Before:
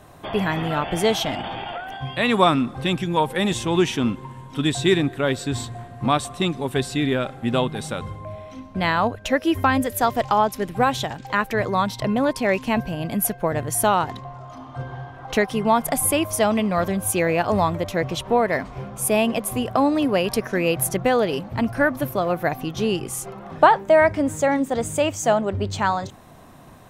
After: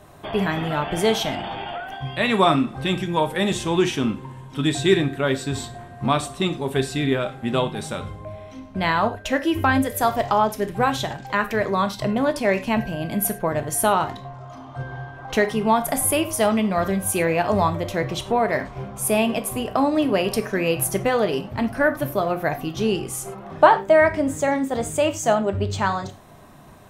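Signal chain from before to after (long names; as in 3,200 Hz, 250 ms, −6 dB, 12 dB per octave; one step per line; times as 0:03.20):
reverb whose tail is shaped and stops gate 130 ms falling, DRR 7 dB
level −1 dB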